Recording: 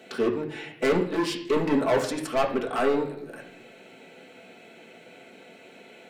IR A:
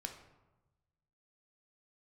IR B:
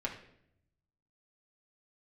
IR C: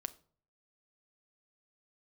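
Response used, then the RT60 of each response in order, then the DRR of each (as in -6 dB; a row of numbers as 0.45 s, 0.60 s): B; 1.1 s, 0.70 s, 0.50 s; 4.0 dB, -3.5 dB, 10.5 dB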